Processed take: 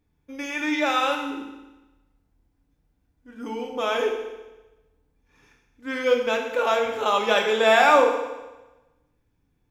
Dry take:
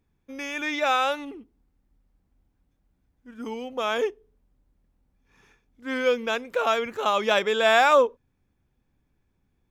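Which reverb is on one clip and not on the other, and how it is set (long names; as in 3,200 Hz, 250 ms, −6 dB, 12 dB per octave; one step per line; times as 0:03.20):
feedback delay network reverb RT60 1.1 s, low-frequency decay 1×, high-frequency decay 0.95×, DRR 1 dB
level −1 dB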